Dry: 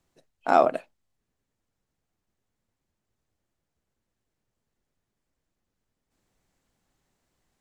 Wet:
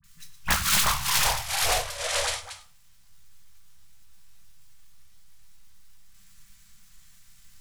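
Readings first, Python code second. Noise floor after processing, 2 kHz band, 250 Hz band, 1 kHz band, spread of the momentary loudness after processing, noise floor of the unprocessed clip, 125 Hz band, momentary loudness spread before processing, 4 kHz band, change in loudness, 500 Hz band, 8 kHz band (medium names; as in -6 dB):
-55 dBFS, +11.5 dB, -5.5 dB, -2.0 dB, 12 LU, -83 dBFS, +16.5 dB, 16 LU, +26.0 dB, -1.5 dB, -8.0 dB, no reading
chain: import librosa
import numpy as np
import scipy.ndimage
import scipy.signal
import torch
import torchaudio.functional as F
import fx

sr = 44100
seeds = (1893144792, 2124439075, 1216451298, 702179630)

p1 = fx.block_float(x, sr, bits=3)
p2 = scipy.signal.sosfilt(scipy.signal.cheby2(4, 40, [290.0, 790.0], 'bandstop', fs=sr, output='sos'), p1)
p3 = fx.high_shelf(p2, sr, hz=4200.0, db=10.5)
p4 = fx.dispersion(p3, sr, late='highs', ms=41.0, hz=1500.0)
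p5 = p4 + fx.echo_single(p4, sr, ms=115, db=-11.5, dry=0)
p6 = fx.over_compress(p5, sr, threshold_db=-27.0, ratio=-0.5)
p7 = fx.echo_pitch(p6, sr, ms=229, semitones=-4, count=3, db_per_echo=-3.0)
p8 = fx.room_shoebox(p7, sr, seeds[0], volume_m3=160.0, walls='furnished', distance_m=1.2)
p9 = np.clip(p8, -10.0 ** (-29.0 / 20.0), 10.0 ** (-29.0 / 20.0))
p10 = p8 + (p9 * librosa.db_to_amplitude(-4.0))
p11 = fx.peak_eq(p10, sr, hz=490.0, db=12.0, octaves=0.24)
p12 = fx.doppler_dist(p11, sr, depth_ms=0.99)
y = p12 * librosa.db_to_amplitude(2.0)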